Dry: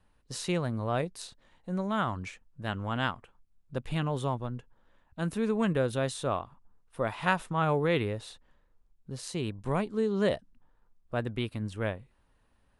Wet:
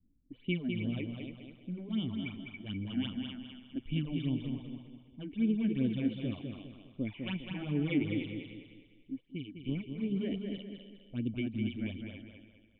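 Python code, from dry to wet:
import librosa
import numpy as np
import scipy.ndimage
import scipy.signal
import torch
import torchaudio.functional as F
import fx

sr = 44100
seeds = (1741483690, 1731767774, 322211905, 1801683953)

p1 = fx.env_lowpass(x, sr, base_hz=540.0, full_db=-26.0)
p2 = fx.formant_cascade(p1, sr, vowel='i')
p3 = fx.high_shelf(p2, sr, hz=2300.0, db=11.0)
p4 = fx.echo_thinned(p3, sr, ms=277, feedback_pct=22, hz=400.0, wet_db=-6.5)
p5 = fx.phaser_stages(p4, sr, stages=8, low_hz=130.0, high_hz=1700.0, hz=2.6, feedback_pct=40)
p6 = p5 + fx.echo_feedback(p5, sr, ms=203, feedback_pct=38, wet_db=-5.5, dry=0)
p7 = fx.upward_expand(p6, sr, threshold_db=-48.0, expansion=1.5, at=(9.19, 10.11), fade=0.02)
y = p7 * librosa.db_to_amplitude(6.5)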